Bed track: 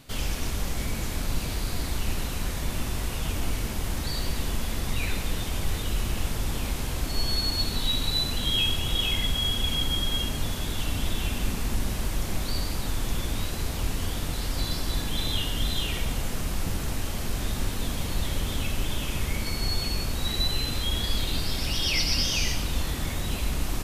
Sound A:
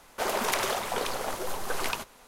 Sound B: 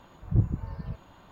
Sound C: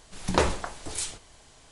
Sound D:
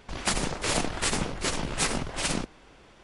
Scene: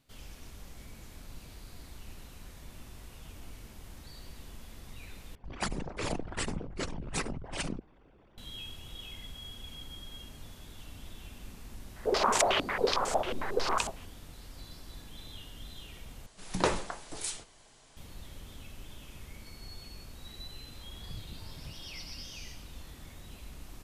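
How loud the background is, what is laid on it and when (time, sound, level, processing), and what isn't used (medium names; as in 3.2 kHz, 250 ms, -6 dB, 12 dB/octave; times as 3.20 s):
bed track -19 dB
5.35 s: replace with D -6.5 dB + resonances exaggerated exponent 2
11.87 s: add A -1.5 dB + step-sequenced low-pass 11 Hz 270–7800 Hz
16.26 s: replace with C -4.5 dB + peaking EQ 64 Hz -11.5 dB 0.7 oct
20.79 s: add B -7 dB + compression, threshold -36 dBFS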